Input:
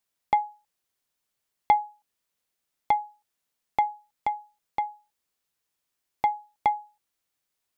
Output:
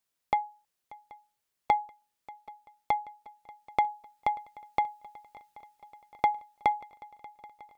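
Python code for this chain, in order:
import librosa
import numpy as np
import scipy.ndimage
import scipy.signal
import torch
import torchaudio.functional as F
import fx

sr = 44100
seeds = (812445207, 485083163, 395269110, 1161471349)

y = fx.rider(x, sr, range_db=10, speed_s=2.0)
y = fx.dynamic_eq(y, sr, hz=1000.0, q=1.1, threshold_db=-35.0, ratio=4.0, max_db=-4)
y = fx.echo_swing(y, sr, ms=781, ratio=3, feedback_pct=68, wet_db=-22.0)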